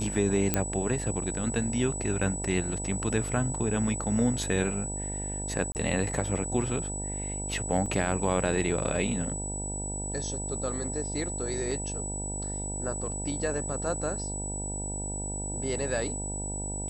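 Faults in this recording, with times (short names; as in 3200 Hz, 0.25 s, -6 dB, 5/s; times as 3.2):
buzz 50 Hz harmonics 19 -36 dBFS
tone 7900 Hz -35 dBFS
0.54 pop -8 dBFS
5.72–5.75 gap 29 ms
7.86 gap 4.1 ms
11.71 gap 4.1 ms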